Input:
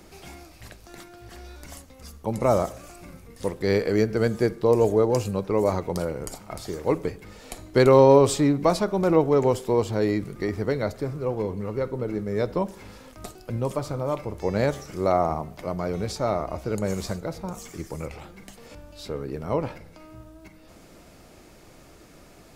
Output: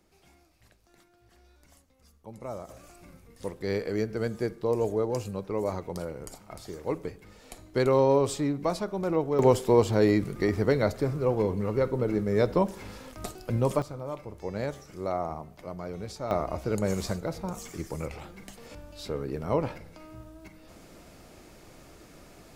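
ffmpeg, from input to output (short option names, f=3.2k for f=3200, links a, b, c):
-af "asetnsamples=n=441:p=0,asendcmd='2.69 volume volume -7.5dB;9.39 volume volume 1.5dB;13.82 volume volume -9dB;16.31 volume volume -1dB',volume=-17dB"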